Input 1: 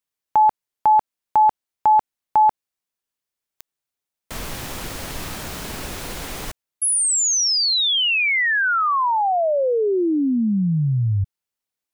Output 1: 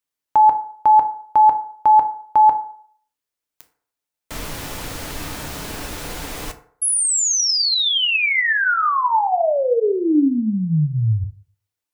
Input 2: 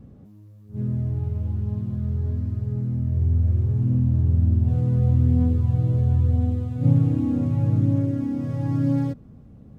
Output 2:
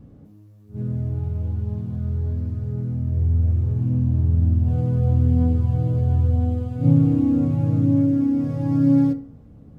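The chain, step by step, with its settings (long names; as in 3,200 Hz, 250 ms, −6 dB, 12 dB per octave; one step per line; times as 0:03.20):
feedback delay network reverb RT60 0.57 s, low-frequency decay 0.75×, high-frequency decay 0.5×, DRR 6 dB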